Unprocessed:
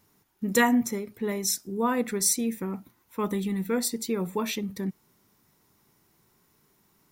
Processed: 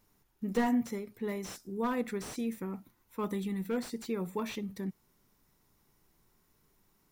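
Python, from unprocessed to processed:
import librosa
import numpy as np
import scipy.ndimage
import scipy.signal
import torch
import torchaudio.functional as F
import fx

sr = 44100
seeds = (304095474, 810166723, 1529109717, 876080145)

y = fx.dmg_noise_colour(x, sr, seeds[0], colour='brown', level_db=-68.0)
y = fx.slew_limit(y, sr, full_power_hz=70.0)
y = y * librosa.db_to_amplitude(-6.0)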